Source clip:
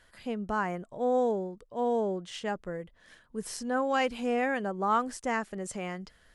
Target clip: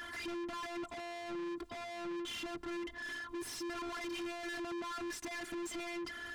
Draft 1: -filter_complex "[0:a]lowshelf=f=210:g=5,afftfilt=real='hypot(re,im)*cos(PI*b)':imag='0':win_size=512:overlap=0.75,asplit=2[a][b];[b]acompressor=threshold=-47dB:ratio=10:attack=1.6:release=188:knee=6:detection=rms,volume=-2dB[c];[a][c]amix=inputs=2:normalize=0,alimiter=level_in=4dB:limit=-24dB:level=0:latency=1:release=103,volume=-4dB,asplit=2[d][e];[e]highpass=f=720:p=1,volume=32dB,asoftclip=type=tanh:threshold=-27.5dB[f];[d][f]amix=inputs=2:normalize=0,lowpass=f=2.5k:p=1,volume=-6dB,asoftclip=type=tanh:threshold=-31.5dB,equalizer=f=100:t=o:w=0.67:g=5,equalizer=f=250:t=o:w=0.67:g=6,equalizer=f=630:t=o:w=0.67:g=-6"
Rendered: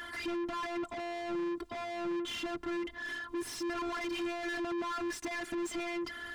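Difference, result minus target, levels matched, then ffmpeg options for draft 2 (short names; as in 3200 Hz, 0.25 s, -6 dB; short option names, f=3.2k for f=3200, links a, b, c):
soft clip: distortion -8 dB
-filter_complex "[0:a]lowshelf=f=210:g=5,afftfilt=real='hypot(re,im)*cos(PI*b)':imag='0':win_size=512:overlap=0.75,asplit=2[a][b];[b]acompressor=threshold=-47dB:ratio=10:attack=1.6:release=188:knee=6:detection=rms,volume=-2dB[c];[a][c]amix=inputs=2:normalize=0,alimiter=level_in=4dB:limit=-24dB:level=0:latency=1:release=103,volume=-4dB,asplit=2[d][e];[e]highpass=f=720:p=1,volume=32dB,asoftclip=type=tanh:threshold=-27.5dB[f];[d][f]amix=inputs=2:normalize=0,lowpass=f=2.5k:p=1,volume=-6dB,asoftclip=type=tanh:threshold=-40dB,equalizer=f=100:t=o:w=0.67:g=5,equalizer=f=250:t=o:w=0.67:g=6,equalizer=f=630:t=o:w=0.67:g=-6"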